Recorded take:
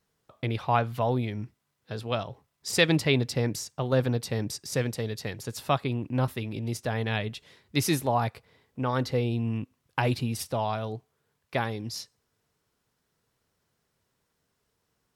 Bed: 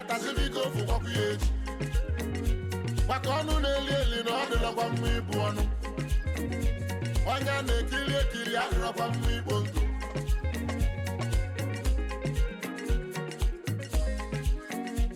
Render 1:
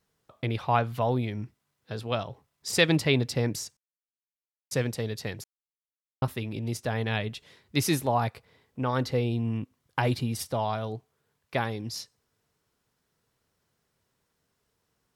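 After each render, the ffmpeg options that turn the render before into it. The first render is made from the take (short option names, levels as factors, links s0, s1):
-filter_complex "[0:a]asettb=1/sr,asplit=3[s0][s1][s2];[s0]atrim=end=9.324[s3];[s1]atrim=start=9.32:end=10.85,asetpts=PTS-STARTPTS,afade=t=in:d=0.004:c=qsin,afade=t=out:st=1.526:d=0.004:c=qsin,bandreject=f=2600:w=13[s4];[s2]atrim=start=10.846[s5];[s3][s4]acrossfade=d=0.004:c1=hsin:c2=qsin[s6];[s6][s5]acrossfade=d=0.004:c1=qsin:c2=hsin,asplit=5[s7][s8][s9][s10][s11];[s7]atrim=end=3.77,asetpts=PTS-STARTPTS,afade=t=out:st=3.766:d=0.004:c=hsin[s12];[s8]atrim=start=3.77:end=4.71,asetpts=PTS-STARTPTS,volume=0[s13];[s9]atrim=start=4.71:end=5.44,asetpts=PTS-STARTPTS,afade=t=in:d=0.004:c=hsin,afade=t=out:st=0.726:d=0.004:c=hsin[s14];[s10]atrim=start=5.44:end=6.22,asetpts=PTS-STARTPTS,volume=0[s15];[s11]atrim=start=6.22,asetpts=PTS-STARTPTS,afade=t=in:d=0.004:c=hsin[s16];[s12][s13][s14][s15][s16]concat=n=5:v=0:a=1"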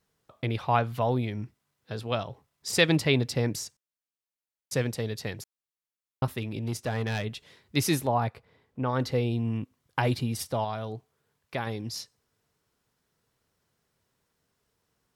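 -filter_complex "[0:a]asettb=1/sr,asplit=3[s0][s1][s2];[s0]atrim=end=6.384[s3];[s1]atrim=start=6.38:end=7.25,asetpts=PTS-STARTPTS,afade=t=in:d=0.004:c=qsin,afade=t=out:st=0.866:d=0.004:c=qsin,asoftclip=type=hard:threshold=0.0631[s4];[s2]atrim=start=7.246[s5];[s3][s4]acrossfade=d=0.004:c1=hsin:c2=qsin[s6];[s6][s5]acrossfade=d=0.004:c1=qsin:c2=hsin,asettb=1/sr,asplit=3[s7][s8][s9];[s7]atrim=end=8.074[s10];[s8]atrim=start=8.07:end=9,asetpts=PTS-STARTPTS,afade=t=in:d=0.004:c=qsin,afade=t=out:st=0.926:d=0.004:c=qsin,highshelf=f=3100:g=-9[s11];[s9]atrim=start=8.996[s12];[s10][s11]acrossfade=d=0.004:c1=hsin:c2=qsin[s13];[s13][s12]acrossfade=d=0.004:c1=qsin:c2=hsin,asettb=1/sr,asplit=3[s14][s15][s16];[s14]atrim=end=10.644[s17];[s15]atrim=start=10.64:end=11.67,asetpts=PTS-STARTPTS,afade=t=in:d=0.004:c=qsin,afade=t=out:st=1.026:d=0.004:c=qsin,acompressor=threshold=0.0224:ratio=1.5:attack=3.2:release=140:knee=1:detection=peak[s18];[s16]atrim=start=11.666[s19];[s17][s18]acrossfade=d=0.004:c1=hsin:c2=qsin[s20];[s20][s19]acrossfade=d=0.004:c1=qsin:c2=hsin"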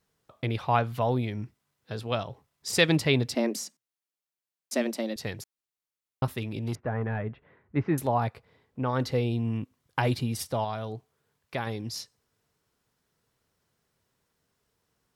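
-filter_complex "[0:a]asettb=1/sr,asplit=3[s0][s1][s2];[s0]atrim=end=3.354[s3];[s1]atrim=start=3.35:end=5.16,asetpts=PTS-STARTPTS,afade=t=in:d=0.004:c=qsin,afade=t=out:st=1.806:d=0.004:c=qsin,afreqshift=110[s4];[s2]atrim=start=5.156[s5];[s3][s4]acrossfade=d=0.004:c1=hsin:c2=qsin[s6];[s6][s5]acrossfade=d=0.004:c1=qsin:c2=hsin,asettb=1/sr,asplit=3[s7][s8][s9];[s7]atrim=end=6.754[s10];[s8]atrim=start=6.75:end=7.98,asetpts=PTS-STARTPTS,afade=t=in:d=0.004:c=qsin,afade=t=out:st=1.226:d=0.004:c=qsin,lowpass=f=1800:w=0.5412,lowpass=f=1800:w=1.3066[s11];[s9]atrim=start=7.976[s12];[s10][s11]acrossfade=d=0.004:c1=hsin:c2=qsin[s13];[s13][s12]acrossfade=d=0.004:c1=qsin:c2=hsin"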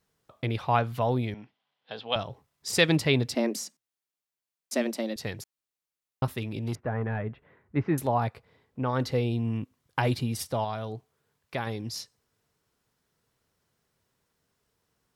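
-filter_complex "[0:a]asettb=1/sr,asplit=3[s0][s1][s2];[s0]atrim=end=1.344[s3];[s1]atrim=start=1.34:end=2.16,asetpts=PTS-STARTPTS,afade=t=in:d=0.004:c=qsin,afade=t=out:st=0.816:d=0.004:c=qsin,highpass=310,equalizer=f=360:t=q:w=4:g=-10,equalizer=f=780:t=q:w=4:g=6,equalizer=f=1300:t=q:w=4:g=-3,equalizer=f=3200:t=q:w=4:g=9,lowpass=f=4300:w=0.5412,lowpass=f=4300:w=1.3066[s4];[s2]atrim=start=2.156[s5];[s3][s4]acrossfade=d=0.004:c1=hsin:c2=qsin[s6];[s6][s5]acrossfade=d=0.004:c1=qsin:c2=hsin"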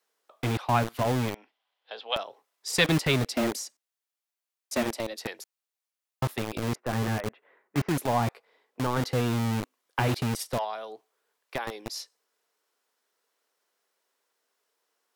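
-filter_complex "[0:a]acrossover=split=350|560|4600[s0][s1][s2][s3];[s0]acrusher=bits=4:mix=0:aa=0.000001[s4];[s1]asoftclip=type=hard:threshold=0.0141[s5];[s4][s5][s2][s3]amix=inputs=4:normalize=0"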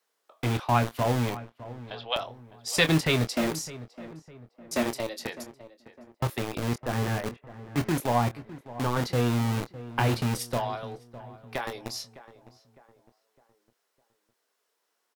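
-filter_complex "[0:a]asplit=2[s0][s1];[s1]adelay=25,volume=0.316[s2];[s0][s2]amix=inputs=2:normalize=0,asplit=2[s3][s4];[s4]adelay=607,lowpass=f=1600:p=1,volume=0.168,asplit=2[s5][s6];[s6]adelay=607,lowpass=f=1600:p=1,volume=0.44,asplit=2[s7][s8];[s8]adelay=607,lowpass=f=1600:p=1,volume=0.44,asplit=2[s9][s10];[s10]adelay=607,lowpass=f=1600:p=1,volume=0.44[s11];[s3][s5][s7][s9][s11]amix=inputs=5:normalize=0"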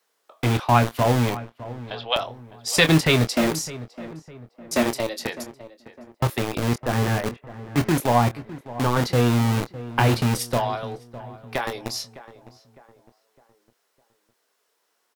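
-af "volume=2,alimiter=limit=0.794:level=0:latency=1"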